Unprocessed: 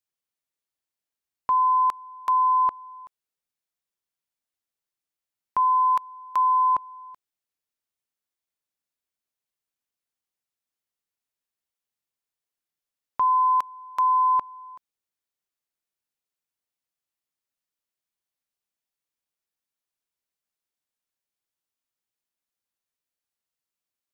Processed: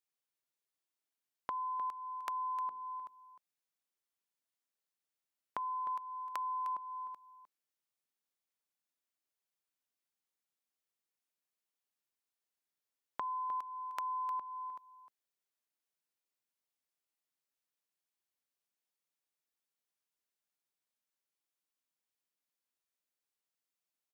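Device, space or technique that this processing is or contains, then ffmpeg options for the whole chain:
serial compression, peaks first: -filter_complex "[0:a]highpass=160,asettb=1/sr,asplit=3[a][b][c];[a]atrim=end=2.434[d];[b]atrim=start=2.43:end=2.94,asetpts=PTS-STARTPTS,afade=t=in:d=0.004:c=qsin,afade=t=out:st=0.506:d=0.004:c=qsin,bandreject=f=60:t=h:w=6,bandreject=f=120:t=h:w=6,bandreject=f=180:t=h:w=6,bandreject=f=240:t=h:w=6,bandreject=f=300:t=h:w=6,bandreject=f=360:t=h:w=6,bandreject=f=420:t=h:w=6,bandreject=f=480:t=h:w=6[e];[c]atrim=start=2.936[f];[d][e]acrossfade=d=0.004:c1=hsin:c2=qsin[g];[g][f]acrossfade=d=0.004:c1=qsin:c2=hsin,acompressor=threshold=-30dB:ratio=5,acompressor=threshold=-35dB:ratio=2.5,aecho=1:1:306:0.237,volume=-3.5dB"

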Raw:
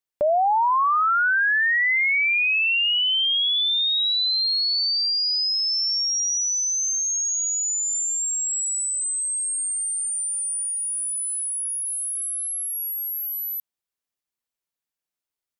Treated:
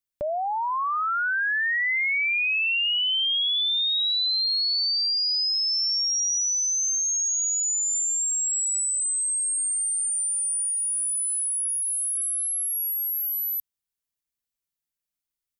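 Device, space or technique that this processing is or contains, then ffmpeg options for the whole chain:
smiley-face EQ: -af "lowshelf=f=120:g=8.5,equalizer=f=660:t=o:w=2.3:g=-5.5,highshelf=f=7.7k:g=5,volume=-2.5dB"

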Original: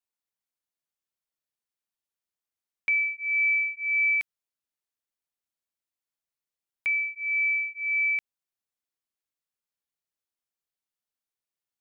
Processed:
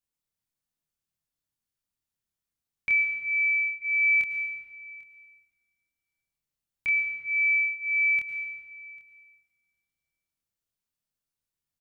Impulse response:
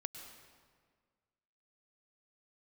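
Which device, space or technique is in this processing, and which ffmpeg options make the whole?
stairwell: -filter_complex "[0:a]asettb=1/sr,asplit=3[a][b][c];[a]atrim=end=3.164[d];[b]atrim=start=3.16:end=3.82,asetpts=PTS-STARTPTS,afade=t=in:d=0.004:c=qsin,afade=t=out:st=0.656:d=0.004:c=qsin,aemphasis=mode=reproduction:type=riaa[e];[c]atrim=start=3.816[f];[d][e]acrossfade=d=0.004:c1=hsin:c2=qsin[g];[g][f]acrossfade=d=0.004:c1=qsin:c2=hsin,bass=f=250:g=13,treble=f=4k:g=3,asplit=2[h][i];[i]adelay=26,volume=-3dB[j];[h][j]amix=inputs=2:normalize=0[k];[1:a]atrim=start_sample=2205[l];[k][l]afir=irnorm=-1:irlink=0,aecho=1:1:795:0.0708"

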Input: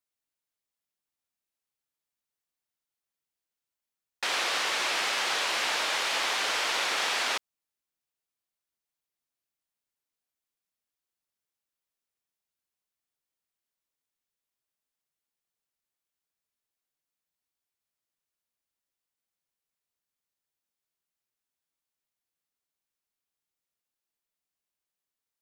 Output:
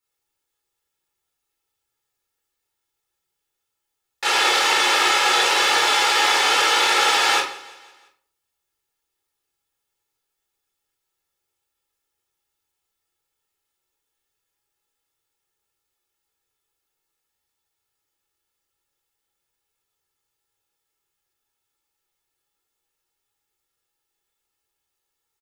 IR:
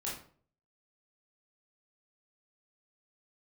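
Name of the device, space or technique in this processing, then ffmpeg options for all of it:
microphone above a desk: -filter_complex "[0:a]aecho=1:1:2.3:0.62[a];[1:a]atrim=start_sample=2205[b];[a][b]afir=irnorm=-1:irlink=0,aecho=1:1:169|338|507|676:0.1|0.053|0.0281|0.0149,volume=7.5dB"

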